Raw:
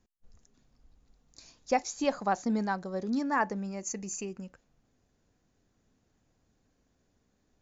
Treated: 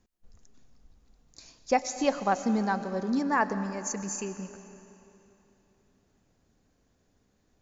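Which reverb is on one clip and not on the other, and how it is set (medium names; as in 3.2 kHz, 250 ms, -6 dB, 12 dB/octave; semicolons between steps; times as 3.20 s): algorithmic reverb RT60 3.2 s, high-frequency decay 0.9×, pre-delay 65 ms, DRR 11 dB; trim +2.5 dB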